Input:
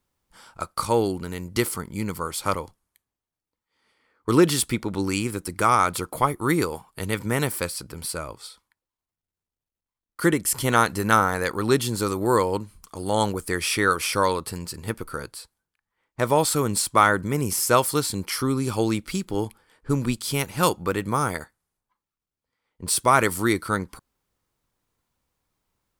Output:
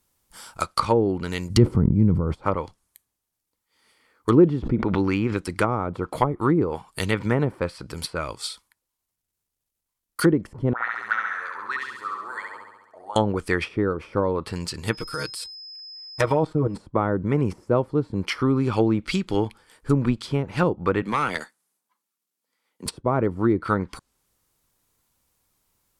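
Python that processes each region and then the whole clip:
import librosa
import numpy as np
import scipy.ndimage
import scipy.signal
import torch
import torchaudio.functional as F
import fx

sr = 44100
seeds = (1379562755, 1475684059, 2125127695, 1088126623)

y = fx.chain(x, sr, fx.bass_treble(bass_db=10, treble_db=5),
    fx.sustainer(db_per_s=28.0), at=(1.5, 2.36))
y = fx.chain(y, sr, fx.resample_bad(factor=3, down='filtered', up='hold'),
    fx.pre_swell(db_per_s=42.0), at=(4.59, 5.37))
y = fx.chain(y, sr, fx.auto_wah(base_hz=550.0, top_hz=1900.0, q=9.8, full_db=-15.5, direction='up'),
    fx.room_flutter(wall_m=11.7, rt60_s=1.1),
    fx.transformer_sat(knee_hz=390.0), at=(10.73, 13.16))
y = fx.comb(y, sr, ms=6.4, depth=0.94, at=(14.92, 16.74), fade=0.02)
y = fx.level_steps(y, sr, step_db=11, at=(14.92, 16.74), fade=0.02)
y = fx.dmg_tone(y, sr, hz=5100.0, level_db=-46.0, at=(14.92, 16.74), fade=0.02)
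y = fx.chain(y, sr, fx.cheby1_highpass(hz=200.0, order=3),
    fx.tube_stage(drive_db=19.0, bias=0.35), at=(21.02, 22.86))
y = fx.high_shelf(y, sr, hz=5600.0, db=11.5)
y = fx.env_lowpass_down(y, sr, base_hz=490.0, full_db=-16.5)
y = fx.dynamic_eq(y, sr, hz=2900.0, q=0.9, threshold_db=-45.0, ratio=4.0, max_db=5)
y = y * librosa.db_to_amplitude(3.0)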